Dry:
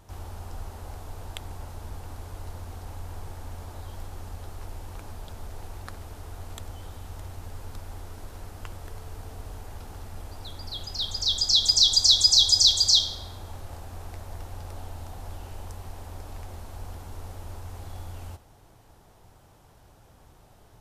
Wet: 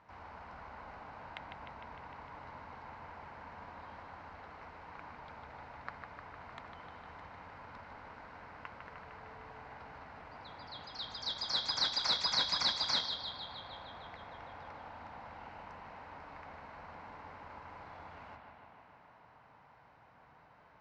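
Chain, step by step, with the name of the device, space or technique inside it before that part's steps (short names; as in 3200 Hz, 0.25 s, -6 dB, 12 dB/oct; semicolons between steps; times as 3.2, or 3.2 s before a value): analogue delay pedal into a guitar amplifier (analogue delay 0.152 s, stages 4096, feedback 74%, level -6 dB; tube stage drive 11 dB, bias 0.5; speaker cabinet 92–3900 Hz, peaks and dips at 95 Hz -9 dB, 370 Hz -9 dB, 1000 Hz +7 dB, 1500 Hz +5 dB, 2100 Hz +7 dB, 3400 Hz -9 dB); low shelf 260 Hz -5.5 dB; gain -3.5 dB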